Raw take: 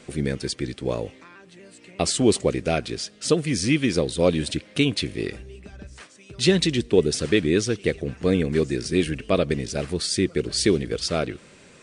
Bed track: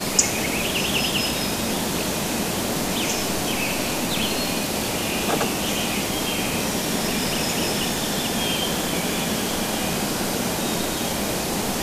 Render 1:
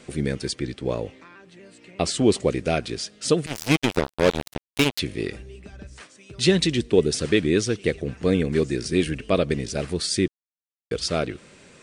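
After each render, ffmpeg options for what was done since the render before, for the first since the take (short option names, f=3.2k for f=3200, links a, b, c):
-filter_complex "[0:a]asettb=1/sr,asplit=3[a][b][c];[a]atrim=end=0.594[d];[b]atrim=start=0.59:end=2.41,asetpts=PTS-STARTPTS,afade=t=in:d=0.004:c=qsin,afade=t=out:st=1.816:d=0.004:c=qsin,highshelf=f=7.5k:g=-8.5[e];[c]atrim=start=2.406[f];[d][e]acrossfade=d=0.004:c1=hsin:c2=qsin[g];[g][f]acrossfade=d=0.004:c1=qsin:c2=hsin,asettb=1/sr,asplit=3[h][i][j];[h]atrim=end=3.464[k];[i]atrim=start=3.46:end=4.99,asetpts=PTS-STARTPTS,afade=t=in:d=0.004:c=qsin,afade=t=out:st=1.526:d=0.004:c=qsin,acrusher=bits=2:mix=0:aa=0.5[l];[j]atrim=start=4.986[m];[k][l]acrossfade=d=0.004:c1=hsin:c2=qsin[n];[n][m]acrossfade=d=0.004:c1=qsin:c2=hsin,asplit=3[o][p][q];[o]atrim=end=10.28,asetpts=PTS-STARTPTS,afade=t=out:st=10.276:d=0.004:c=hsin[r];[p]atrim=start=10.28:end=10.91,asetpts=PTS-STARTPTS,volume=0[s];[q]atrim=start=10.91,asetpts=PTS-STARTPTS,afade=t=in:d=0.004:c=hsin[t];[r][s][t]concat=n=3:v=0:a=1"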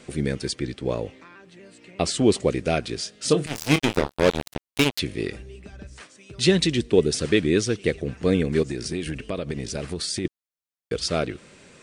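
-filter_complex "[0:a]asettb=1/sr,asplit=3[a][b][c];[a]atrim=end=2.964[d];[b]atrim=start=2.96:end=4.23,asetpts=PTS-STARTPTS,afade=t=in:d=0.004:c=qsin,afade=t=out:st=1.266:d=0.004:c=qsin,asplit=2[e][f];[f]adelay=27,volume=-9dB[g];[e][g]amix=inputs=2:normalize=0,atrim=end_sample=56007[h];[c]atrim=start=4.226[i];[d][h]acrossfade=d=0.004:c1=hsin:c2=qsin[j];[j][i]acrossfade=d=0.004:c1=qsin:c2=hsin,asettb=1/sr,asplit=3[k][l][m];[k]atrim=end=8.624[n];[l]atrim=start=8.62:end=10.25,asetpts=PTS-STARTPTS,afade=t=in:d=0.004:c=qsin,afade=t=out:st=1.626:d=0.004:c=qsin,acompressor=threshold=-24dB:ratio=6:attack=3.2:release=140:knee=1:detection=peak[o];[m]atrim=start=10.246[p];[n][o]acrossfade=d=0.004:c1=hsin:c2=qsin[q];[q][p]acrossfade=d=0.004:c1=qsin:c2=hsin"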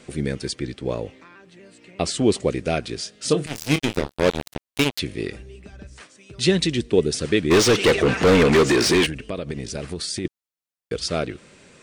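-filter_complex "[0:a]asettb=1/sr,asplit=3[a][b][c];[a]atrim=end=3.534[d];[b]atrim=start=3.53:end=4.19,asetpts=PTS-STARTPTS,afade=t=in:d=0.004:c=qsin,afade=t=out:st=0.656:d=0.004:c=qsin,equalizer=f=960:w=0.81:g=-4.5[e];[c]atrim=start=4.186[f];[d][e]acrossfade=d=0.004:c1=hsin:c2=qsin[g];[g][f]acrossfade=d=0.004:c1=qsin:c2=hsin,asplit=3[h][i][j];[h]afade=t=out:st=7.5:d=0.02[k];[i]asplit=2[l][m];[m]highpass=f=720:p=1,volume=32dB,asoftclip=type=tanh:threshold=-7.5dB[n];[l][n]amix=inputs=2:normalize=0,lowpass=f=3.6k:p=1,volume=-6dB,afade=t=in:st=7.5:d=0.02,afade=t=out:st=9.05:d=0.02[o];[j]afade=t=in:st=9.05:d=0.02[p];[k][o][p]amix=inputs=3:normalize=0"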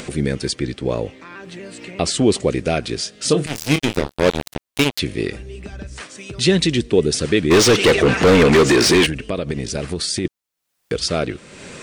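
-filter_complex "[0:a]asplit=2[a][b];[b]alimiter=limit=-16dB:level=0:latency=1,volume=-0.5dB[c];[a][c]amix=inputs=2:normalize=0,acompressor=mode=upward:threshold=-26dB:ratio=2.5"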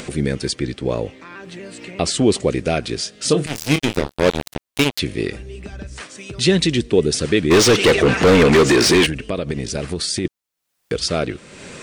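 -af anull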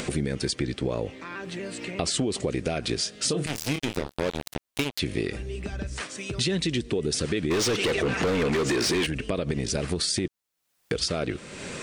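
-af "alimiter=limit=-11.5dB:level=0:latency=1:release=91,acompressor=threshold=-23dB:ratio=6"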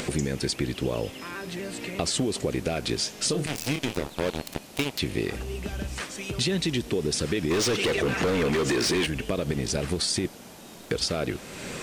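-filter_complex "[1:a]volume=-21.5dB[a];[0:a][a]amix=inputs=2:normalize=0"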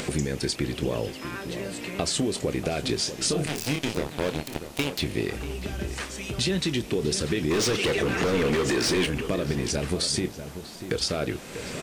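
-filter_complex "[0:a]asplit=2[a][b];[b]adelay=27,volume=-13dB[c];[a][c]amix=inputs=2:normalize=0,asplit=2[d][e];[e]adelay=641.4,volume=-10dB,highshelf=f=4k:g=-14.4[f];[d][f]amix=inputs=2:normalize=0"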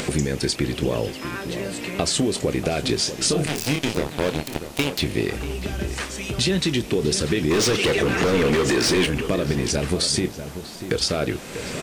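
-af "volume=4.5dB"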